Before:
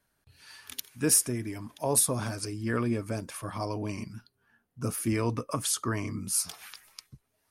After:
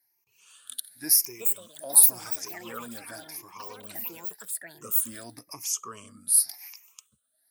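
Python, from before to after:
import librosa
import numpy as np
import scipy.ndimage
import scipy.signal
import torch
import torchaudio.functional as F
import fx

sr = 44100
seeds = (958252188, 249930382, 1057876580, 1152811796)

y = fx.spec_ripple(x, sr, per_octave=0.76, drift_hz=0.92, depth_db=19)
y = fx.riaa(y, sr, side='recording')
y = fx.echo_pitch(y, sr, ms=720, semitones=7, count=3, db_per_echo=-3.0)
y = y * 10.0 ** (-12.5 / 20.0)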